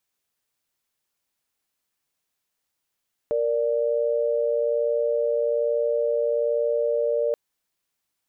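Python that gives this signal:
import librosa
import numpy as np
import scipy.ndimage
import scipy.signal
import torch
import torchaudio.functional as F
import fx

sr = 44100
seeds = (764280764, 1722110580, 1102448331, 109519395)

y = fx.chord(sr, length_s=4.03, notes=(70, 74), wave='sine', level_db=-23.0)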